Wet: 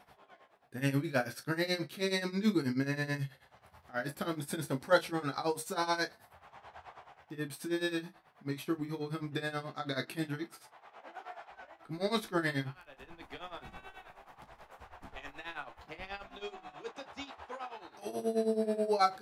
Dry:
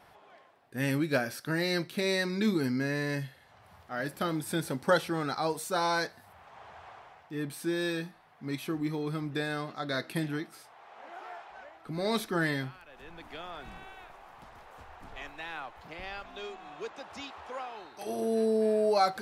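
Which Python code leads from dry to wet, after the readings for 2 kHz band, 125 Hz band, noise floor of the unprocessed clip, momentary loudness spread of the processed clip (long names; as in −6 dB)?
−3.5 dB, −2.5 dB, −58 dBFS, 21 LU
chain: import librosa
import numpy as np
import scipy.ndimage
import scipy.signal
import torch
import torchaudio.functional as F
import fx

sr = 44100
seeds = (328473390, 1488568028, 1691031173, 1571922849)

p1 = x * (1.0 - 0.89 / 2.0 + 0.89 / 2.0 * np.cos(2.0 * np.pi * 9.3 * (np.arange(len(x)) / sr)))
y = p1 + fx.room_early_taps(p1, sr, ms=(15, 36), db=(-8.0, -13.5), dry=0)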